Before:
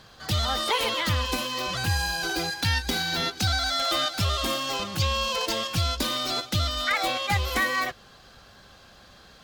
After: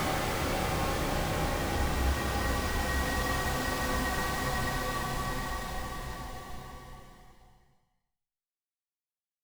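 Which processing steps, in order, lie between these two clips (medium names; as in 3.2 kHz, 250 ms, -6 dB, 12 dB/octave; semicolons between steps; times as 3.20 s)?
Schmitt trigger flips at -25.5 dBFS; chorus voices 4, 0.43 Hz, delay 30 ms, depth 3.5 ms; Paulstretch 6.1×, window 1.00 s, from 7.09 s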